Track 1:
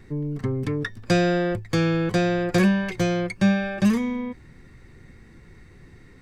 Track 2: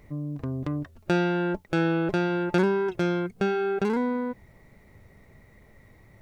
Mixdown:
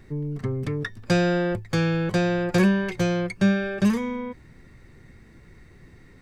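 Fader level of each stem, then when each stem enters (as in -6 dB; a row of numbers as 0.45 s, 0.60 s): -1.5 dB, -9.5 dB; 0.00 s, 0.00 s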